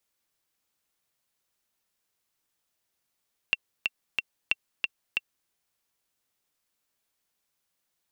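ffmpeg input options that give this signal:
-f lavfi -i "aevalsrc='pow(10,(-9.5-3*gte(mod(t,3*60/183),60/183))/20)*sin(2*PI*2720*mod(t,60/183))*exp(-6.91*mod(t,60/183)/0.03)':d=1.96:s=44100"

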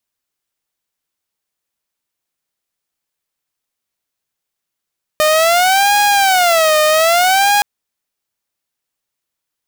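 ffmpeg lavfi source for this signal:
-f lavfi -i "aevalsrc='0.447*(2*mod((718*t-105/(2*PI*0.62)*sin(2*PI*0.62*t)),1)-1)':d=2.42:s=44100"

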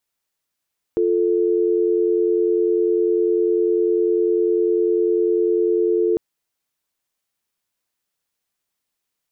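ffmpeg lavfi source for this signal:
-f lavfi -i "aevalsrc='0.126*(sin(2*PI*350*t)+sin(2*PI*440*t))':d=5.2:s=44100"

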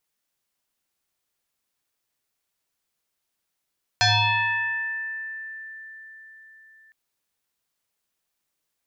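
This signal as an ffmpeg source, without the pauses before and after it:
-f lavfi -i "aevalsrc='0.178*pow(10,-3*t/4.7)*sin(2*PI*1770*t+4.6*pow(10,-3*t/2)*sin(2*PI*0.47*1770*t))':d=2.91:s=44100"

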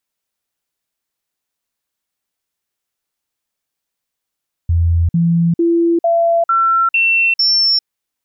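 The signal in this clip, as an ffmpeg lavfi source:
-f lavfi -i "aevalsrc='0.316*clip(min(mod(t,0.45),0.4-mod(t,0.45))/0.005,0,1)*sin(2*PI*84.4*pow(2,floor(t/0.45)/1)*mod(t,0.45))':d=3.15:s=44100"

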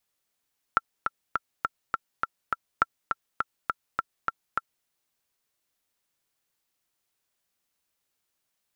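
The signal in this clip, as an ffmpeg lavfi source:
-f lavfi -i "aevalsrc='pow(10,(-6.5-5.5*gte(mod(t,7*60/205),60/205))/20)*sin(2*PI*1350*mod(t,60/205))*exp(-6.91*mod(t,60/205)/0.03)':d=4.09:s=44100"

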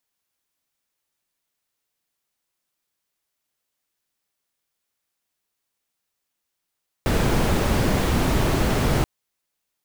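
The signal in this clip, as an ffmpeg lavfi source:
-f lavfi -i "anoisesrc=c=brown:a=0.495:d=1.98:r=44100:seed=1"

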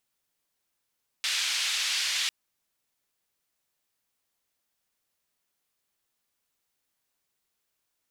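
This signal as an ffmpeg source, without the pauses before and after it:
-f lavfi -i "anoisesrc=c=white:d=1.05:r=44100:seed=1,highpass=f=2600,lowpass=f=4100,volume=-13dB"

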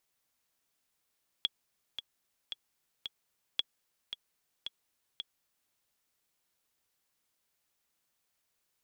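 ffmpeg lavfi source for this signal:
-f lavfi -i "aevalsrc='pow(10,(-15.5-9.5*gte(mod(t,4*60/112),60/112))/20)*sin(2*PI*3350*mod(t,60/112))*exp(-6.91*mod(t,60/112)/0.03)':d=4.28:s=44100"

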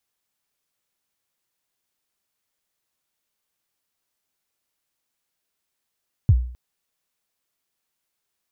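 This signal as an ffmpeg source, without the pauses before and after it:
-f lavfi -i "aevalsrc='0.398*pow(10,-3*t/0.51)*sin(2*PI*(130*0.051/log(61/130)*(exp(log(61/130)*min(t,0.051)/0.051)-1)+61*max(t-0.051,0)))':d=0.26:s=44100"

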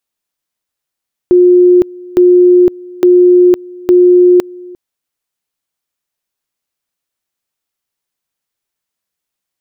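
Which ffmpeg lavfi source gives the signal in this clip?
-f lavfi -i "aevalsrc='pow(10,(-2.5-24*gte(mod(t,0.86),0.51))/20)*sin(2*PI*358*t)':d=3.44:s=44100"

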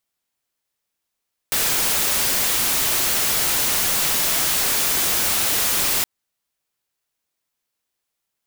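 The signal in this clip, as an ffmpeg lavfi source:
-f lavfi -i "anoisesrc=c=white:a=0.173:d=4.52:r=44100:seed=1"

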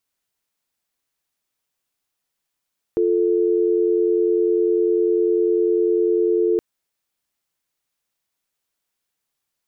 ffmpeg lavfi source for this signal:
-f lavfi -i "aevalsrc='0.126*(sin(2*PI*350*t)+sin(2*PI*440*t))':d=3.62:s=44100"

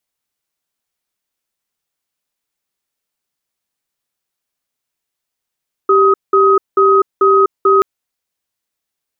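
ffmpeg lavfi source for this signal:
-f lavfi -i "aevalsrc='0.335*(sin(2*PI*391*t)+sin(2*PI*1260*t))*clip(min(mod(t,0.44),0.25-mod(t,0.44))/0.005,0,1)':d=1.93:s=44100"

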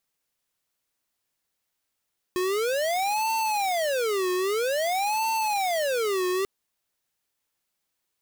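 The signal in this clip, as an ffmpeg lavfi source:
-f lavfi -i "aevalsrc='0.0531*(2*lt(mod((629*t-266/(2*PI*0.51)*sin(2*PI*0.51*t)),1),0.5)-1)':d=4.09:s=44100"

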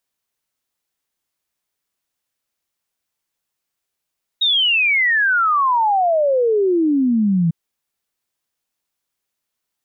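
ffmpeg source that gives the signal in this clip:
-f lavfi -i "aevalsrc='0.224*clip(min(t,3.1-t)/0.01,0,1)*sin(2*PI*3800*3.1/log(160/3800)*(exp(log(160/3800)*t/3.1)-1))':d=3.1:s=44100"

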